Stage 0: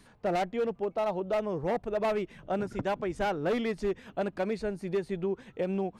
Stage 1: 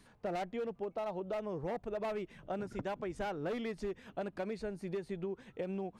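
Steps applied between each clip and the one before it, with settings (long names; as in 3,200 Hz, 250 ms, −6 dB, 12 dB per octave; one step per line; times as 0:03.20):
downward compressor, threshold −30 dBFS, peak gain reduction 5 dB
level −4.5 dB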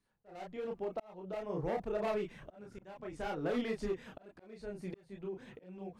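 multi-voice chorus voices 4, 0.66 Hz, delay 30 ms, depth 4.1 ms
noise gate with hold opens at −51 dBFS
volume swells 636 ms
level +5.5 dB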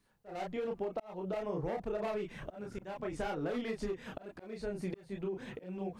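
downward compressor 6 to 1, threshold −41 dBFS, peak gain reduction 11 dB
level +7.5 dB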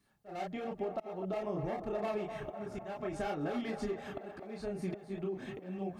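notch comb filter 490 Hz
feedback echo with a band-pass in the loop 252 ms, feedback 71%, band-pass 800 Hz, level −7.5 dB
level +1 dB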